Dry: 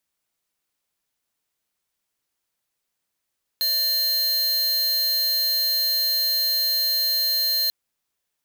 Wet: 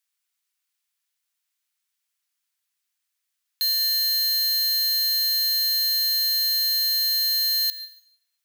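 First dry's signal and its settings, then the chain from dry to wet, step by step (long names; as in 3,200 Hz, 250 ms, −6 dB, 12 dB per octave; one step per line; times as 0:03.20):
tone square 4,170 Hz −22 dBFS 4.09 s
high-pass filter 1,500 Hz 12 dB per octave
dense smooth reverb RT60 0.78 s, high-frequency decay 0.95×, pre-delay 75 ms, DRR 14.5 dB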